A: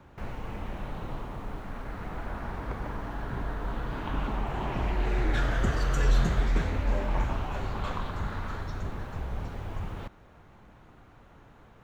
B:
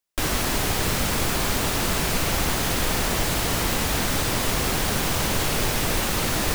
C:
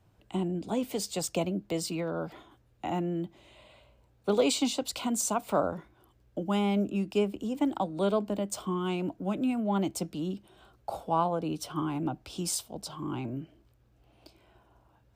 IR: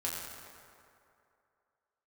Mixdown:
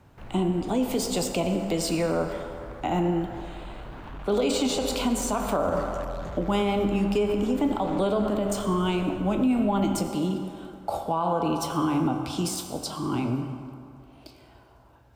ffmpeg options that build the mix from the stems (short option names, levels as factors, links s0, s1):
-filter_complex "[0:a]asoftclip=type=tanh:threshold=0.0355,volume=0.562[s0];[2:a]deesser=0.65,volume=1.41,asplit=2[s1][s2];[s2]volume=0.668[s3];[3:a]atrim=start_sample=2205[s4];[s3][s4]afir=irnorm=-1:irlink=0[s5];[s0][s1][s5]amix=inputs=3:normalize=0,alimiter=limit=0.158:level=0:latency=1:release=59"